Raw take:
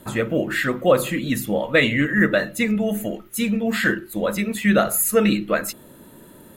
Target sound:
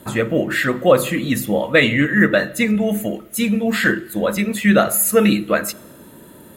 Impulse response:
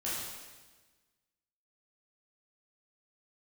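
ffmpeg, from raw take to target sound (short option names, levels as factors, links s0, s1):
-filter_complex "[0:a]highpass=44,asplit=2[s0][s1];[1:a]atrim=start_sample=2205[s2];[s1][s2]afir=irnorm=-1:irlink=0,volume=0.0562[s3];[s0][s3]amix=inputs=2:normalize=0,volume=1.41"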